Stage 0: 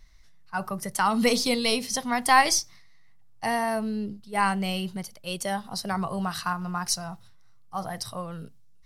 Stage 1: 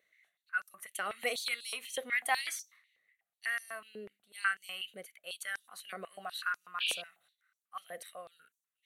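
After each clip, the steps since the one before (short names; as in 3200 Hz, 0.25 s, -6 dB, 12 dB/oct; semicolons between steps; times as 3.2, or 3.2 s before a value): painted sound noise, 6.8–7.02, 2300–5300 Hz -30 dBFS; fixed phaser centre 2200 Hz, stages 4; stepped high-pass 8.1 Hz 520–5700 Hz; gain -7 dB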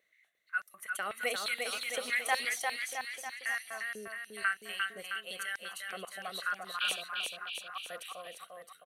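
bouncing-ball echo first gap 0.35 s, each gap 0.9×, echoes 5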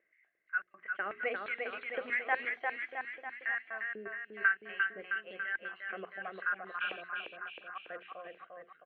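steep low-pass 2500 Hz 36 dB/oct; notches 60/120/180/240/300/360/420 Hz; small resonant body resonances 340/1600 Hz, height 9 dB, ringing for 25 ms; gain -2 dB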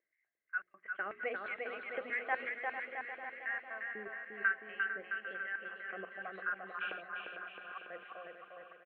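gate -54 dBFS, range -8 dB; high shelf 3500 Hz -8 dB; on a send: feedback echo 0.45 s, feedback 59%, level -10 dB; on the sum: gain -2.5 dB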